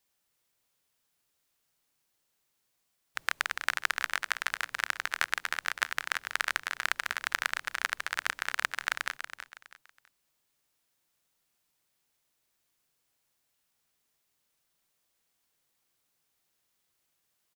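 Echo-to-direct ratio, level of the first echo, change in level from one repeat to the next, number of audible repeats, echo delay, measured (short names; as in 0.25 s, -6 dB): -9.5 dB, -10.0 dB, -10.5 dB, 3, 0.325 s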